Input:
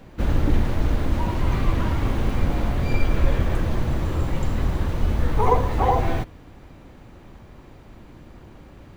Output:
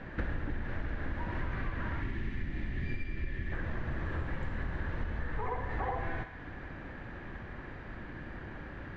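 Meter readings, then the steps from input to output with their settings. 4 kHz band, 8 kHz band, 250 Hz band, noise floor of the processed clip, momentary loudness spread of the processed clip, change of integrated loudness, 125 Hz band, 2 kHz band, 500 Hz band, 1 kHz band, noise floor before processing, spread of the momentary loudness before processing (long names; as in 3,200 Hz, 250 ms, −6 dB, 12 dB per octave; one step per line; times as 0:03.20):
−15.5 dB, can't be measured, −13.5 dB, −45 dBFS, 8 LU, −15.0 dB, −14.0 dB, −4.0 dB, −15.0 dB, −14.5 dB, −46 dBFS, 5 LU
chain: low-pass filter 3,100 Hz 12 dB per octave
gain on a spectral selection 0:02.01–0:03.52, 410–1,700 Hz −12 dB
parametric band 1,700 Hz +14 dB 0.48 octaves
downward compressor 12 to 1, threshold −31 dBFS, peak gain reduction 20 dB
on a send: feedback echo with a high-pass in the loop 64 ms, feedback 80%, high-pass 490 Hz, level −10 dB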